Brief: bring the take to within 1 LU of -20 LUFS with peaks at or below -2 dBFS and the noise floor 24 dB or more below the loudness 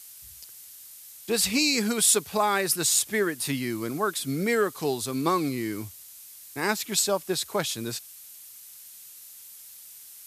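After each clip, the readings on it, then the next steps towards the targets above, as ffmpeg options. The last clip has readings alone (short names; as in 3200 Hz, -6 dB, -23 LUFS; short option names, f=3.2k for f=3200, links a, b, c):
noise floor -47 dBFS; noise floor target -50 dBFS; loudness -25.5 LUFS; peak -8.0 dBFS; loudness target -20.0 LUFS
-> -af "afftdn=nr=6:nf=-47"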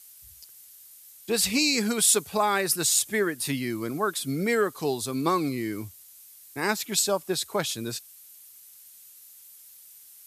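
noise floor -51 dBFS; loudness -25.5 LUFS; peak -8.0 dBFS; loudness target -20.0 LUFS
-> -af "volume=5.5dB"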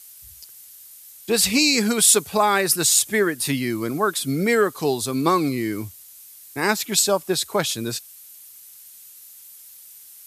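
loudness -20.0 LUFS; peak -2.5 dBFS; noise floor -45 dBFS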